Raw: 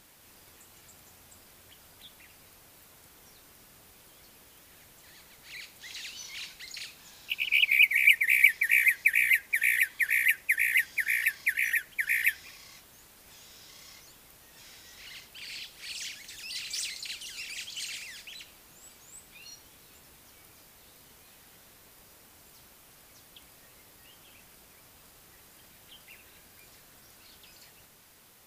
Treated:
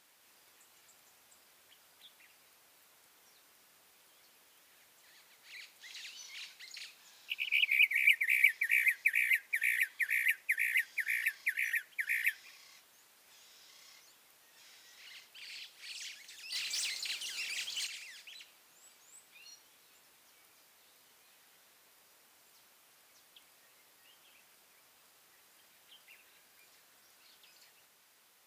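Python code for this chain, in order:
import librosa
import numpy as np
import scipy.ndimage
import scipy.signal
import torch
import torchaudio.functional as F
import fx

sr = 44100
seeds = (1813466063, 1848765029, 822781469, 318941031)

y = fx.leveller(x, sr, passes=2, at=(16.52, 17.87))
y = fx.highpass(y, sr, hz=730.0, slope=6)
y = fx.high_shelf(y, sr, hz=8000.0, db=-5.0)
y = F.gain(torch.from_numpy(y), -5.5).numpy()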